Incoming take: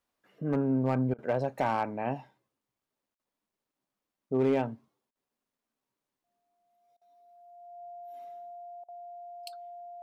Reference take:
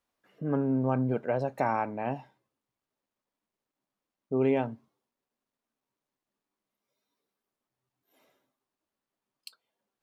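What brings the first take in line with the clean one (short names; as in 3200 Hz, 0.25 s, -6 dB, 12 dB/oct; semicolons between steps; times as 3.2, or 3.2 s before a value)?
clip repair -19.5 dBFS; notch 700 Hz, Q 30; interpolate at 1.14/3.15/5.11/6.97/8.84, 43 ms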